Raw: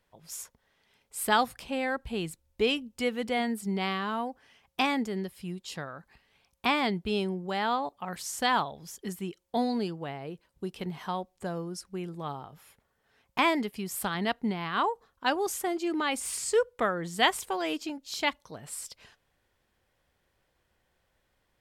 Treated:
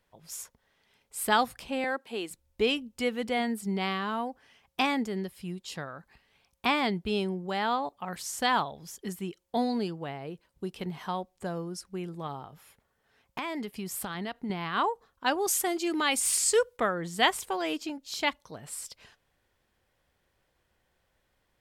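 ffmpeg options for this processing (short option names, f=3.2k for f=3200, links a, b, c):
-filter_complex "[0:a]asettb=1/sr,asplit=3[a][b][c];[a]atrim=end=1.844[d];[b]atrim=start=1.84:end=2.31,asetpts=PTS-STARTPTS,afade=t=in:d=0.004:c=qsin,afade=t=out:st=0.466:d=0.004:c=qsin,highpass=f=270:w=0.5412,highpass=f=270:w=1.3066[e];[c]atrim=start=2.306[f];[d][e]acrossfade=d=0.004:c1=hsin:c2=qsin[g];[g][f]acrossfade=d=0.004:c1=qsin:c2=hsin,asettb=1/sr,asplit=3[h][i][j];[h]atrim=end=12.264[k];[i]atrim=start=12.26:end=14.5,asetpts=PTS-STARTPTS,afade=t=in:d=0.004:c=qsin,afade=t=out:st=2.236:d=0.004:c=qsin,acompressor=threshold=-31dB:ratio=6:attack=3.2:release=140:knee=1:detection=peak[l];[j]atrim=start=14.496[m];[k][l]acrossfade=d=0.004:c1=hsin:c2=qsin[n];[n][m]acrossfade=d=0.004:c1=qsin:c2=hsin,asettb=1/sr,asplit=3[o][p][q];[o]atrim=end=15.474[r];[p]atrim=start=15.47:end=16.77,asetpts=PTS-STARTPTS,afade=t=in:d=0.004:c=qsin,afade=t=out:st=1.296:d=0.004:c=qsin,highshelf=f=2.4k:g=8.5[s];[q]atrim=start=16.766[t];[r][s]acrossfade=d=0.004:c1=hsin:c2=qsin[u];[u][t]acrossfade=d=0.004:c1=qsin:c2=hsin"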